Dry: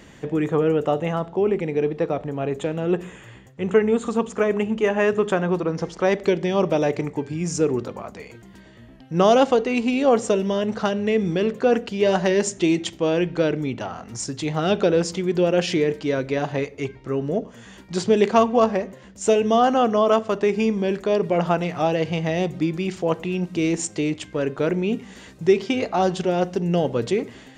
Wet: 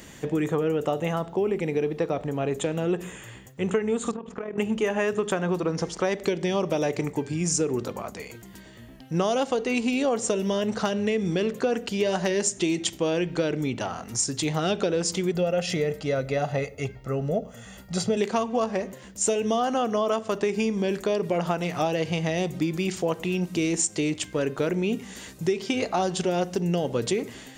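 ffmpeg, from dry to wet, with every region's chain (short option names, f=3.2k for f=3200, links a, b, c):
-filter_complex "[0:a]asettb=1/sr,asplit=3[a][b][c];[a]atrim=end=4.114[d];[b]atrim=start=4.11:end=4.58,asetpts=PTS-STARTPTS,afade=t=in:d=0.004:c=qsin,afade=t=out:st=0.466:d=0.004:c=qsin,lowpass=2.2k,acompressor=threshold=-27dB:ratio=10:attack=3.2:release=140:knee=1:detection=peak,tremolo=f=40:d=0.621[e];[c]atrim=start=4.576[f];[d][e]acrossfade=d=0.004:c1=hsin:c2=qsin[g];[g][f]acrossfade=d=0.004:c1=qsin:c2=hsin,asettb=1/sr,asplit=3[h][i][j];[h]atrim=end=15.314[k];[i]atrim=start=15.31:end=18.17,asetpts=PTS-STARTPTS,afade=t=in:d=0.004:c=qsin,afade=t=out:st=2.856:d=0.004:c=qsin,lowpass=f=1.3k:p=1,aemphasis=mode=production:type=50fm,aecho=1:1:1.5:0.65,atrim=end_sample=126126[l];[j]atrim=start=18.166[m];[k][l]acrossfade=d=0.004:c1=hsin:c2=qsin[n];[n][m]acrossfade=d=0.004:c1=qsin:c2=hsin,aemphasis=mode=production:type=50fm,acompressor=threshold=-21dB:ratio=6"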